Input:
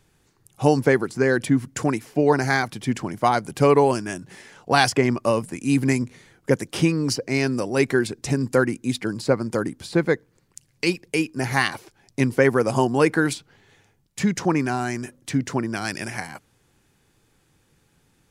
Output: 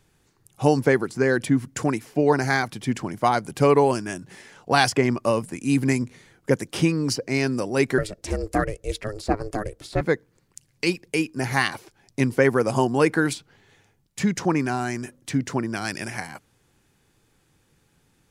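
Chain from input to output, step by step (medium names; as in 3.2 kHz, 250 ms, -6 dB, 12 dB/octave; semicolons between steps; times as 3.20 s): 7.98–10.01 s: ring modulator 210 Hz; trim -1 dB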